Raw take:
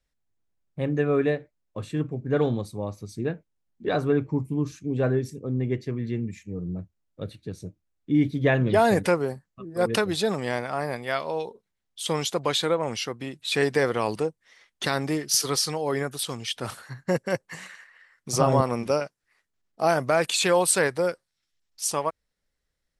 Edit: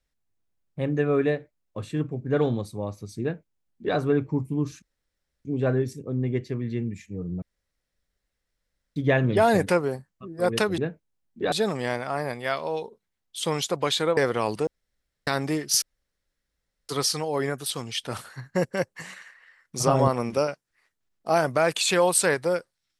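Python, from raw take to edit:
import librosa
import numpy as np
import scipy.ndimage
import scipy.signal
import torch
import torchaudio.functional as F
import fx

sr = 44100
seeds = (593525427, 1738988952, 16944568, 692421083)

y = fx.edit(x, sr, fx.duplicate(start_s=3.22, length_s=0.74, to_s=10.15),
    fx.insert_room_tone(at_s=4.82, length_s=0.63),
    fx.room_tone_fill(start_s=6.79, length_s=1.54),
    fx.cut(start_s=12.8, length_s=0.97),
    fx.room_tone_fill(start_s=14.27, length_s=0.6),
    fx.insert_room_tone(at_s=15.42, length_s=1.07), tone=tone)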